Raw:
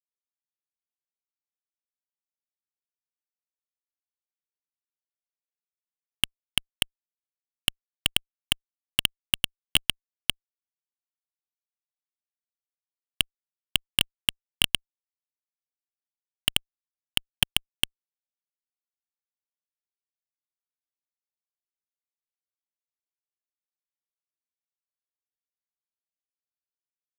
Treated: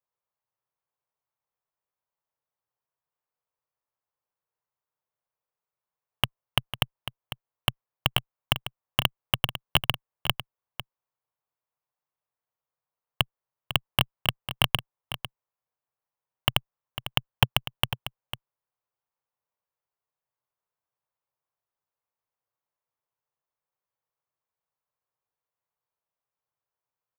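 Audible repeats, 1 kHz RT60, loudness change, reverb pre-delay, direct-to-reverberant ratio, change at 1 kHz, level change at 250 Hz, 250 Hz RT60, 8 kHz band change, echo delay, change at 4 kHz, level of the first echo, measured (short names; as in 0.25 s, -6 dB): 1, none, -0.5 dB, none, none, +12.0 dB, +4.0 dB, none, -7.5 dB, 0.5 s, -1.5 dB, -12.0 dB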